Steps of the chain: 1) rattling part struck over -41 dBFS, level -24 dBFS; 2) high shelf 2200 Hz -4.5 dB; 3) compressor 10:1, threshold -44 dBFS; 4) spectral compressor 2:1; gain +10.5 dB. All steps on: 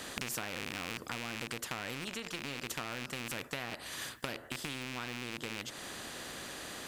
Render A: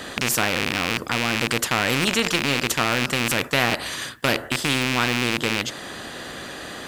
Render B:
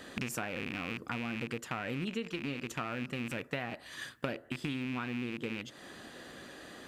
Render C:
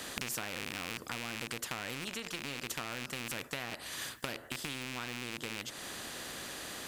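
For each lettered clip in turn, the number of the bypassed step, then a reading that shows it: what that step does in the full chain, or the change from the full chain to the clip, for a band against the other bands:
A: 3, crest factor change -4.5 dB; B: 4, 8 kHz band -9.0 dB; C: 2, 8 kHz band +2.0 dB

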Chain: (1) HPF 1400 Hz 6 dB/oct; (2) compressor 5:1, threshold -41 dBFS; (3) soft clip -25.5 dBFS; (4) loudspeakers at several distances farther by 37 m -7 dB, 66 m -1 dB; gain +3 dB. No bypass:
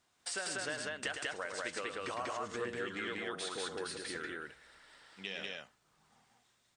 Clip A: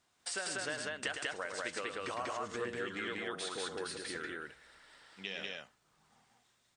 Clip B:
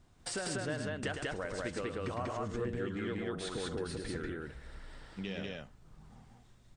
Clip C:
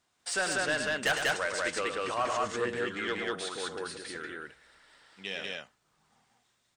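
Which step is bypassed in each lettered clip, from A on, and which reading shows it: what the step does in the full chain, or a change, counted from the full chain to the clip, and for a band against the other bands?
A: 3, distortion -28 dB; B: 1, 125 Hz band +15.5 dB; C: 2, mean gain reduction 6.5 dB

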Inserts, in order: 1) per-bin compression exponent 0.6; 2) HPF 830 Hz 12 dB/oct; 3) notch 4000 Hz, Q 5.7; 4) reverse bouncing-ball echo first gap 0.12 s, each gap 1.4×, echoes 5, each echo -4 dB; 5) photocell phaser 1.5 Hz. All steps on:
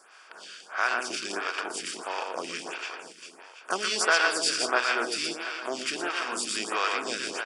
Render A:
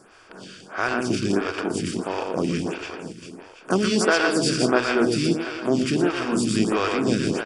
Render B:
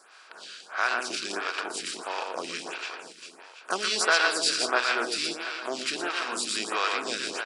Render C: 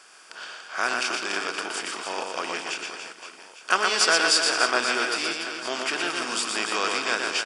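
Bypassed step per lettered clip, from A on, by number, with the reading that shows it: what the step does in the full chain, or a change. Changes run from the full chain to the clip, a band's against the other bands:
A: 2, 250 Hz band +18.0 dB; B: 3, 4 kHz band +1.5 dB; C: 5, loudness change +4.0 LU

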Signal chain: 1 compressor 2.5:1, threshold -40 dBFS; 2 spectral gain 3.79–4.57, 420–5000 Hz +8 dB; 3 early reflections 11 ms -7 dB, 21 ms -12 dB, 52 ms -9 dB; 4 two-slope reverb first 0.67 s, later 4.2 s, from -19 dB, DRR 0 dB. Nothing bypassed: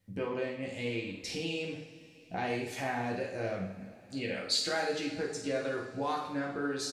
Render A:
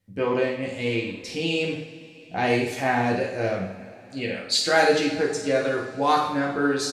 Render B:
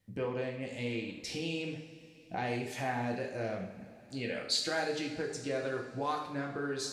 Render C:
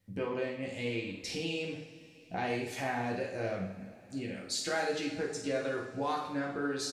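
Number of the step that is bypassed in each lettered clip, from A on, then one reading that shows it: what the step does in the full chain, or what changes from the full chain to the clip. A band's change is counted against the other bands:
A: 1, mean gain reduction 8.5 dB; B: 3, echo-to-direct 2.5 dB to 0.0 dB; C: 2, momentary loudness spread change -2 LU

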